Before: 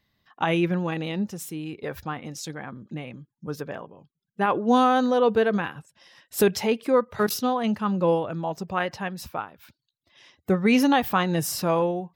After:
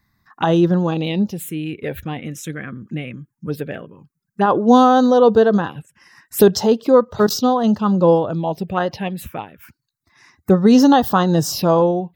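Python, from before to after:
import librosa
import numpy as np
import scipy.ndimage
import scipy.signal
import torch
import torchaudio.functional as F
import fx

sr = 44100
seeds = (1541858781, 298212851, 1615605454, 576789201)

y = fx.env_phaser(x, sr, low_hz=520.0, high_hz=2300.0, full_db=-22.5)
y = F.gain(torch.from_numpy(y), 9.0).numpy()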